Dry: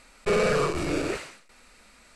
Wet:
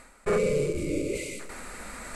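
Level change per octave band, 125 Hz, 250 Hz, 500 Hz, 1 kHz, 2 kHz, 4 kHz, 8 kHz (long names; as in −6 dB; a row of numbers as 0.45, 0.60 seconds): −0.5, −1.0, −1.0, −8.0, −5.5, −7.0, +1.0 decibels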